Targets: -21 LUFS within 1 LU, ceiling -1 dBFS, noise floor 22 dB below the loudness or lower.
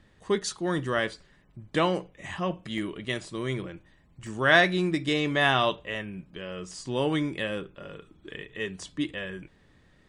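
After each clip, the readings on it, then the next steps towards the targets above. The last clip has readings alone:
dropouts 2; longest dropout 1.2 ms; loudness -28.0 LUFS; peak -6.5 dBFS; loudness target -21.0 LUFS
-> interpolate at 2.78/4.27, 1.2 ms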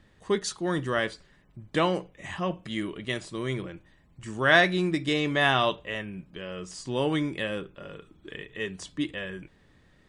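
dropouts 0; loudness -28.0 LUFS; peak -6.5 dBFS; loudness target -21.0 LUFS
-> gain +7 dB; limiter -1 dBFS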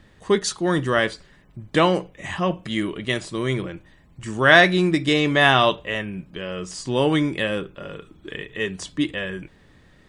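loudness -21.0 LUFS; peak -1.0 dBFS; noise floor -54 dBFS

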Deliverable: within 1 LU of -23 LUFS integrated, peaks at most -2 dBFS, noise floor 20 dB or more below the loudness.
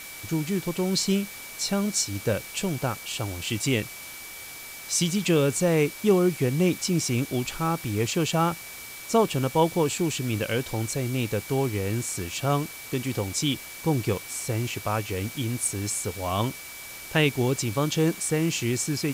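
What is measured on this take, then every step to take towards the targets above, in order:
steady tone 2300 Hz; tone level -43 dBFS; noise floor -41 dBFS; noise floor target -46 dBFS; loudness -26.0 LUFS; peak -9.5 dBFS; loudness target -23.0 LUFS
-> notch 2300 Hz, Q 30; denoiser 6 dB, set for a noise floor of -41 dBFS; gain +3 dB

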